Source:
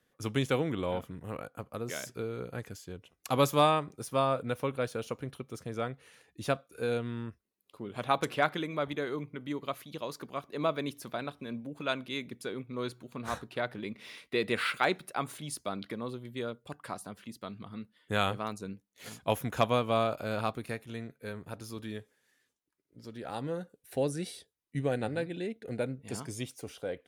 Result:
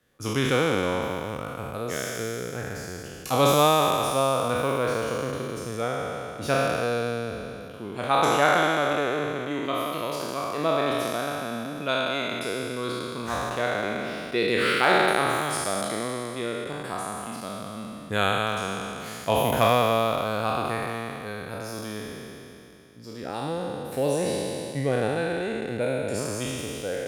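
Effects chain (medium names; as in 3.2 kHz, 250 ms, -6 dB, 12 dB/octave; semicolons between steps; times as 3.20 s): spectral sustain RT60 2.96 s; trim +2.5 dB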